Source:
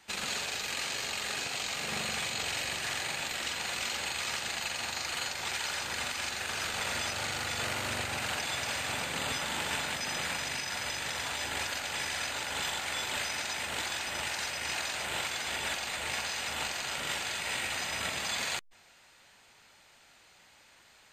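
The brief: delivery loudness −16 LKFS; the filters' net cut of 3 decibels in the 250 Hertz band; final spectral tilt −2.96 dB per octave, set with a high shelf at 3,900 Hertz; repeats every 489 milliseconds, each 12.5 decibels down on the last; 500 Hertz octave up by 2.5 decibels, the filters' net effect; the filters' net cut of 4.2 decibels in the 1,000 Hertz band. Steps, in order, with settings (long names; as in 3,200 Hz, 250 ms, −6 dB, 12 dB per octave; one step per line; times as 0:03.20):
parametric band 250 Hz −6 dB
parametric band 500 Hz +7 dB
parametric band 1,000 Hz −7.5 dB
high-shelf EQ 3,900 Hz −5.5 dB
repeating echo 489 ms, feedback 24%, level −12.5 dB
level +19 dB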